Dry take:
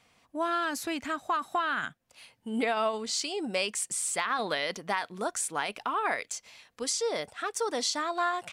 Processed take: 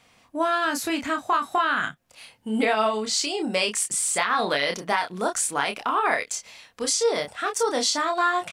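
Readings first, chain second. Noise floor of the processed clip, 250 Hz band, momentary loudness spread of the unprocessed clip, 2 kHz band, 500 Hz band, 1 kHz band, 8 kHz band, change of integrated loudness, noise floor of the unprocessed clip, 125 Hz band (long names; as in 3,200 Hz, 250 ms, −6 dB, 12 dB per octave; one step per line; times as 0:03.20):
−59 dBFS, +6.5 dB, 5 LU, +6.5 dB, +6.5 dB, +6.5 dB, +6.5 dB, +6.5 dB, −70 dBFS, +7.0 dB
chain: double-tracking delay 28 ms −5 dB
every ending faded ahead of time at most 590 dB per second
level +5.5 dB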